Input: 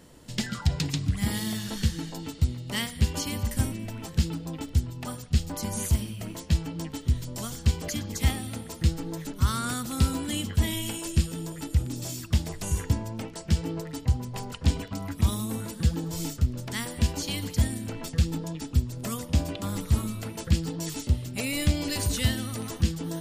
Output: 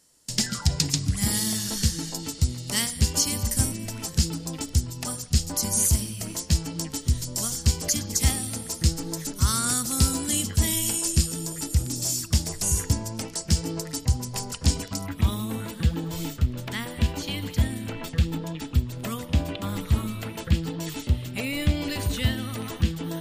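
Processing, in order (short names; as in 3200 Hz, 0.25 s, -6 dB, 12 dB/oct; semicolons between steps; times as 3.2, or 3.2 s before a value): band shelf 7600 Hz +11 dB, from 15.05 s -8 dB; gate with hold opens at -33 dBFS; mismatched tape noise reduction encoder only; gain +1 dB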